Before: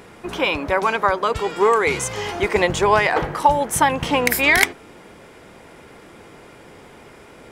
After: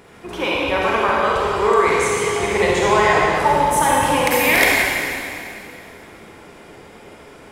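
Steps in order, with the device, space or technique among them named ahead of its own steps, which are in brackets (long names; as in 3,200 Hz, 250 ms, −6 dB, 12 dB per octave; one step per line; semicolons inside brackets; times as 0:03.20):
stairwell (convolution reverb RT60 2.5 s, pre-delay 33 ms, DRR −5 dB)
level −4 dB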